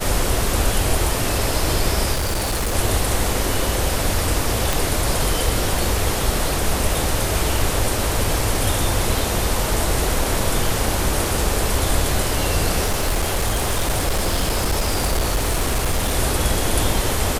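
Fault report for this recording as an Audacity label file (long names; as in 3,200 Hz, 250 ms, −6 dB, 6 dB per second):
2.130000	2.750000	clipping −18 dBFS
4.730000	4.730000	click
12.840000	16.160000	clipping −15 dBFS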